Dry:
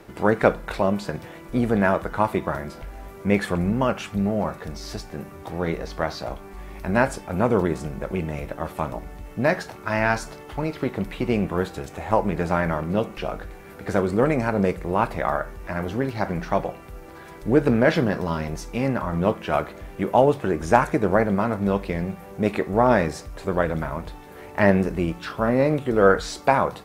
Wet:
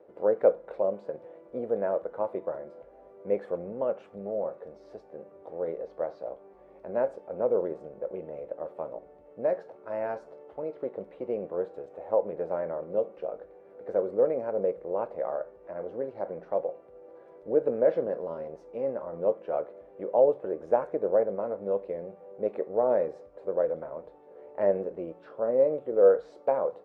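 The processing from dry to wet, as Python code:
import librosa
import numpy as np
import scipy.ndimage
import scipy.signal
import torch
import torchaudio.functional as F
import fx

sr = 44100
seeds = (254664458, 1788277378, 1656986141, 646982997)

y = fx.bandpass_q(x, sr, hz=520.0, q=5.0)
y = y * librosa.db_to_amplitude(1.0)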